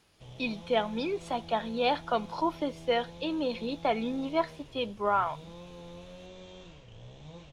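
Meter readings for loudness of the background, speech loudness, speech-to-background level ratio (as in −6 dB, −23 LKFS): −48.5 LKFS, −31.0 LKFS, 17.5 dB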